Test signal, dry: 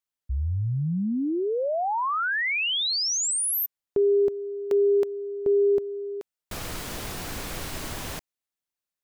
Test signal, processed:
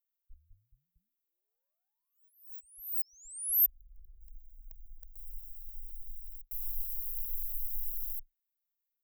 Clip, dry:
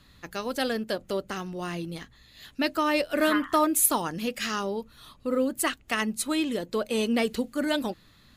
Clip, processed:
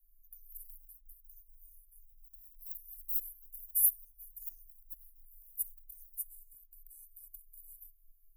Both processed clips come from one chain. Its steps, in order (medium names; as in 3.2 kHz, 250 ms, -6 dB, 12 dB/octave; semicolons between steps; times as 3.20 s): inverse Chebyshev band-stop 120–3400 Hz, stop band 80 dB; ever faster or slower copies 277 ms, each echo +5 st, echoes 3, each echo -6 dB; trim +7 dB